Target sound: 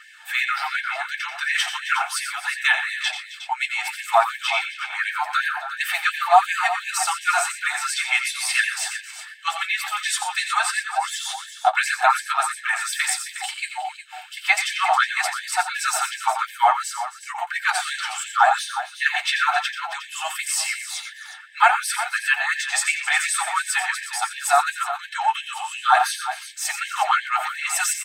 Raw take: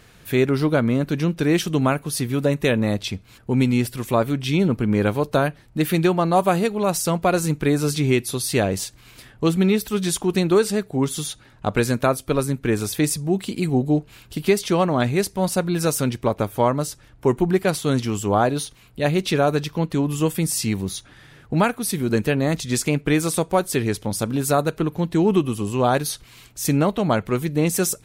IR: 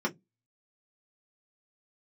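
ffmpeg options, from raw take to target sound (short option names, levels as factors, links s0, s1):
-filter_complex "[0:a]aphaser=in_gain=1:out_gain=1:delay=3.6:decay=0.37:speed=2:type=sinusoidal,aecho=1:1:87|119|266|362:0.335|0.224|0.168|0.251[s0];[1:a]atrim=start_sample=2205,asetrate=66150,aresample=44100[s1];[s0][s1]afir=irnorm=-1:irlink=0,afftfilt=real='re*gte(b*sr/1024,630*pow(1600/630,0.5+0.5*sin(2*PI*2.8*pts/sr)))':imag='im*gte(b*sr/1024,630*pow(1600/630,0.5+0.5*sin(2*PI*2.8*pts/sr)))':win_size=1024:overlap=0.75,volume=1.33"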